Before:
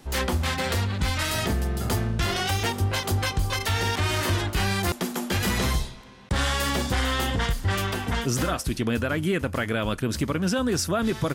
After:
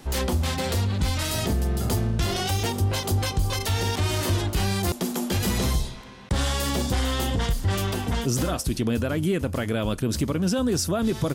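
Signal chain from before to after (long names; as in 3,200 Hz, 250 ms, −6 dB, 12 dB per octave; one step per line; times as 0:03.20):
dynamic equaliser 1,700 Hz, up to −8 dB, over −43 dBFS, Q 0.78
in parallel at 0 dB: brickwall limiter −23.5 dBFS, peak gain reduction 7.5 dB
on the sum: level −2 dB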